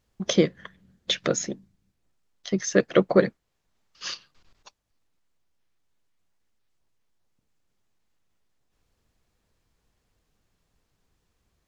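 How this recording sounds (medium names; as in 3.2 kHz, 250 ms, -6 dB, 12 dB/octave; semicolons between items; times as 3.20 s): noise floor -76 dBFS; spectral tilt -4.0 dB/octave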